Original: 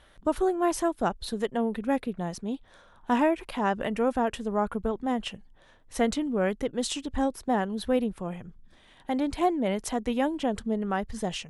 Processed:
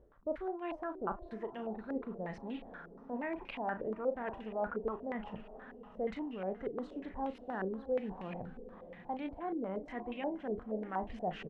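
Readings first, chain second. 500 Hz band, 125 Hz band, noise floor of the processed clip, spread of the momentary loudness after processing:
-9.5 dB, -11.0 dB, -55 dBFS, 9 LU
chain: reverse; compression 5:1, threshold -39 dBFS, peak gain reduction 18 dB; reverse; doubling 37 ms -9.5 dB; echo that smears into a reverb 610 ms, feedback 48%, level -14 dB; step-sequenced low-pass 8.4 Hz 430–2600 Hz; trim -1.5 dB

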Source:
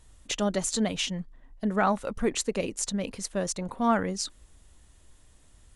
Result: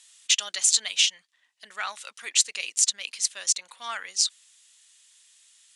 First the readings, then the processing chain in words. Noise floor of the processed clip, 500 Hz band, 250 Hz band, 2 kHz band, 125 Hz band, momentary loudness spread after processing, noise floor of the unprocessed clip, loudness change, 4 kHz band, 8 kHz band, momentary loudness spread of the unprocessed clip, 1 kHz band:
-71 dBFS, -20.0 dB, under -35 dB, +3.5 dB, under -35 dB, 14 LU, -57 dBFS, +5.0 dB, +10.5 dB, +10.5 dB, 8 LU, -9.0 dB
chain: in parallel at +3 dB: gain riding 2 s; on the sum: Butterworth band-pass 5.1 kHz, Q 0.74; trim +3 dB

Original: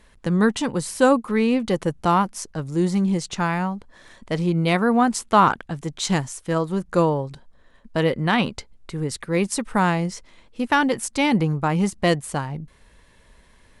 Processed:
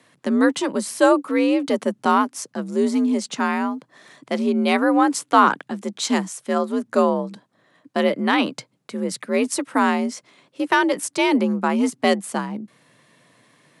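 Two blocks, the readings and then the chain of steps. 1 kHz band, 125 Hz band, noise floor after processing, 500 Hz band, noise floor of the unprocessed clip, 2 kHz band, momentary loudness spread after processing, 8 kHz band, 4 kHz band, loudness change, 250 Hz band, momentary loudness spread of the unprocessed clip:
+1.0 dB, under -10 dB, -65 dBFS, +2.0 dB, -54 dBFS, +1.5 dB, 11 LU, +1.0 dB, +1.0 dB, +1.0 dB, +1.5 dB, 11 LU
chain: high-pass 80 Hz 24 dB/octave; frequency shift +58 Hz; trim +1 dB

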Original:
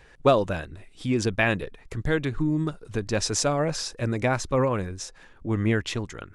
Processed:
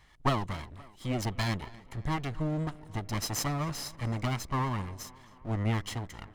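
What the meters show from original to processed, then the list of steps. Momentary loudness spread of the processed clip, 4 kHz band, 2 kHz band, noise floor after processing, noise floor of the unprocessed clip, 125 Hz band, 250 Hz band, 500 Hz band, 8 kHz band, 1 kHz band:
10 LU, -6.0 dB, -10.0 dB, -56 dBFS, -53 dBFS, -3.5 dB, -8.0 dB, -14.0 dB, -7.5 dB, -4.5 dB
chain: comb filter that takes the minimum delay 0.98 ms; tape echo 262 ms, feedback 65%, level -19 dB, low-pass 3.3 kHz; trim -5.5 dB

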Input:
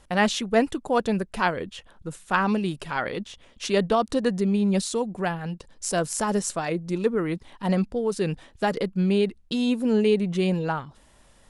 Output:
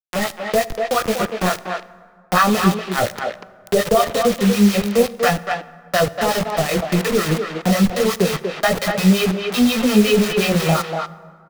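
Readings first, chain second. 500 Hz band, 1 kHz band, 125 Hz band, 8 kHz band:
+6.5 dB, +7.0 dB, +7.5 dB, +6.5 dB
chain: one-bit delta coder 32 kbps, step -29.5 dBFS; gate -26 dBFS, range -13 dB; comb 1.6 ms, depth 56%; level rider gain up to 16.5 dB; chorus voices 2, 0.33 Hz, delay 21 ms, depth 4.6 ms; harmonic tremolo 5.6 Hz, depth 100%, crossover 730 Hz; bit crusher 5-bit; speakerphone echo 240 ms, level -6 dB; plate-style reverb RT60 1.5 s, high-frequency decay 0.55×, DRR 17.5 dB; three bands compressed up and down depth 40%; trim +5 dB

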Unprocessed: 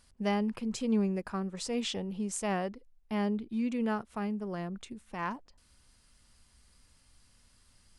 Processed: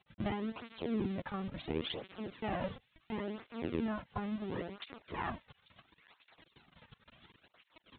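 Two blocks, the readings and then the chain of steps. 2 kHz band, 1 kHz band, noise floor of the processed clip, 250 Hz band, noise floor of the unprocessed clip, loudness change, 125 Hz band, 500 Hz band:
-4.0 dB, -5.0 dB, -76 dBFS, -7.0 dB, -65 dBFS, -6.0 dB, -4.0 dB, -5.0 dB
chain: cycle switcher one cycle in 3, muted; compression 2:1, threshold -50 dBFS, peak gain reduction 13.5 dB; feedback comb 110 Hz, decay 0.33 s, harmonics all, mix 50%; word length cut 10-bit, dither none; on a send: feedback echo behind a high-pass 832 ms, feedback 40%, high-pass 2.4 kHz, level -17 dB; on the sum: LPC vocoder at 8 kHz pitch kept; cancelling through-zero flanger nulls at 0.72 Hz, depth 3.3 ms; trim +16.5 dB

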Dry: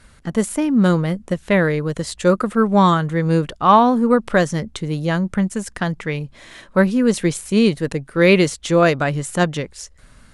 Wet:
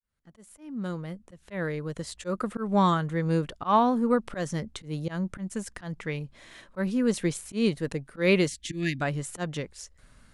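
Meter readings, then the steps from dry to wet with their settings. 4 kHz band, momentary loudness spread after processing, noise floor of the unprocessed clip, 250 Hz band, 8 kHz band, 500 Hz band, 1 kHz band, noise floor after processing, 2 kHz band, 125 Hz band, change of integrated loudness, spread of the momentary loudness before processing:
-9.5 dB, 16 LU, -49 dBFS, -11.0 dB, -9.5 dB, -11.5 dB, -10.5 dB, -61 dBFS, -11.5 dB, -10.5 dB, -10.5 dB, 11 LU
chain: fade-in on the opening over 2.63 s; slow attack 124 ms; time-frequency box 8.48–9.02 s, 350–1600 Hz -27 dB; trim -8.5 dB

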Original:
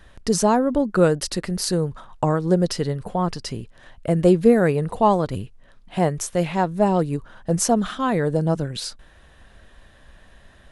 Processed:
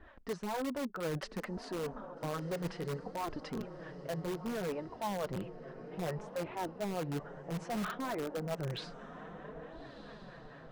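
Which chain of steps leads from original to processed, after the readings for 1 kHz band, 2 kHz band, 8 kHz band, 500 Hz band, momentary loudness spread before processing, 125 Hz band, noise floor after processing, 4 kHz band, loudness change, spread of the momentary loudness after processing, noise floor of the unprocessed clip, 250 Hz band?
-16.5 dB, -12.0 dB, -22.5 dB, -17.5 dB, 12 LU, -17.5 dB, -52 dBFS, -15.0 dB, -18.0 dB, 11 LU, -51 dBFS, -18.0 dB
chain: harmonic tremolo 4.5 Hz, depth 70%, crossover 480 Hz; low-pass 1.7 kHz 12 dB/octave; bass shelf 300 Hz -5 dB; reverse; compression 5:1, threshold -36 dBFS, peak gain reduction 19.5 dB; reverse; bass shelf 100 Hz -8.5 dB; echo that smears into a reverb 1282 ms, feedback 50%, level -13 dB; flange 0.61 Hz, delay 2.7 ms, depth 5 ms, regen -15%; in parallel at -6 dB: integer overflow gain 37 dB; on the sum: trim +3.5 dB

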